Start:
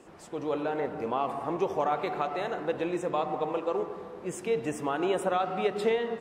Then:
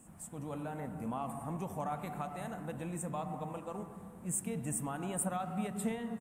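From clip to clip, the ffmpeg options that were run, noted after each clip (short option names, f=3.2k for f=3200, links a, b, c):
-af "firequalizer=gain_entry='entry(220,0);entry(370,-21);entry(670,-12);entry(4900,-18);entry(8400,8)':delay=0.05:min_phase=1,volume=2.5dB"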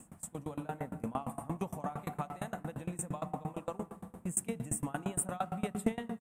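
-af "aeval=exprs='val(0)*pow(10,-25*if(lt(mod(8.7*n/s,1),2*abs(8.7)/1000),1-mod(8.7*n/s,1)/(2*abs(8.7)/1000),(mod(8.7*n/s,1)-2*abs(8.7)/1000)/(1-2*abs(8.7)/1000))/20)':c=same,volume=8dB"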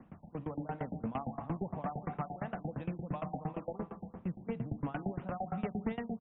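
-filter_complex "[0:a]acrossover=split=140[a][b];[b]asoftclip=type=tanh:threshold=-32.5dB[c];[a][c]amix=inputs=2:normalize=0,afftfilt=real='re*lt(b*sr/1024,860*pow(4000/860,0.5+0.5*sin(2*PI*2.9*pts/sr)))':imag='im*lt(b*sr/1024,860*pow(4000/860,0.5+0.5*sin(2*PI*2.9*pts/sr)))':win_size=1024:overlap=0.75,volume=2.5dB"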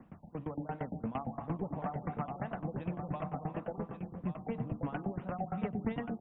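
-af "aecho=1:1:1131:0.422"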